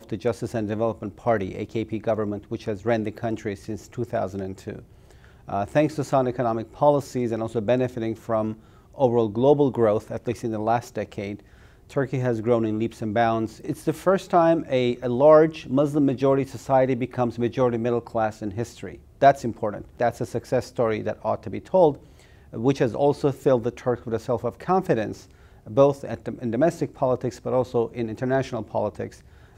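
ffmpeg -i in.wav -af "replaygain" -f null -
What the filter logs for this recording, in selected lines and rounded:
track_gain = +2.9 dB
track_peak = 0.465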